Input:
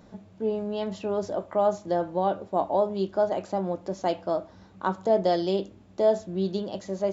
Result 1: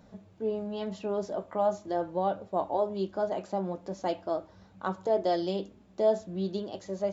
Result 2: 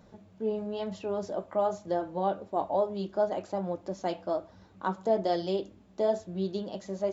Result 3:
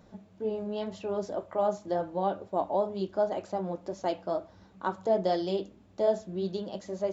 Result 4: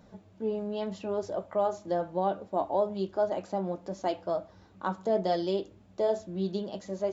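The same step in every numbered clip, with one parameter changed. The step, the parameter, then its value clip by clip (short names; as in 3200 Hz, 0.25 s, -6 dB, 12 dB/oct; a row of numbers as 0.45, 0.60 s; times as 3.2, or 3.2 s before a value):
flange, rate: 0.42, 1.1, 2, 0.68 Hz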